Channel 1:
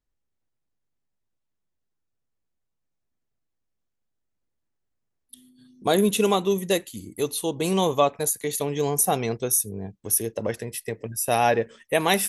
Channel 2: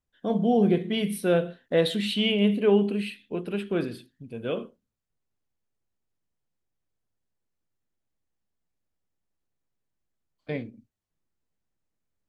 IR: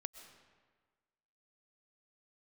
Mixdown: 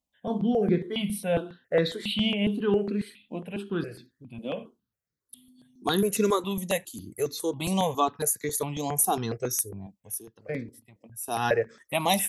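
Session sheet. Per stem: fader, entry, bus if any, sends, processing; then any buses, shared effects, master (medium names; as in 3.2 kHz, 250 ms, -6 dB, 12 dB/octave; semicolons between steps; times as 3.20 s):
0.0 dB, 0.00 s, no send, auto duck -20 dB, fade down 0.80 s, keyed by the second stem
+1.0 dB, 0.00 s, no send, none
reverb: none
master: high-pass 73 Hz; stepped phaser 7.3 Hz 410–3000 Hz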